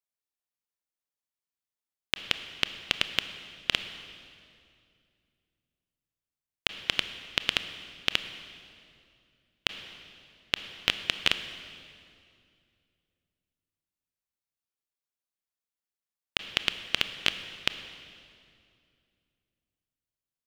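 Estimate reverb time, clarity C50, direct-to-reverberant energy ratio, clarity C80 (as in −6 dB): 2.4 s, 10.5 dB, 9.5 dB, 11.5 dB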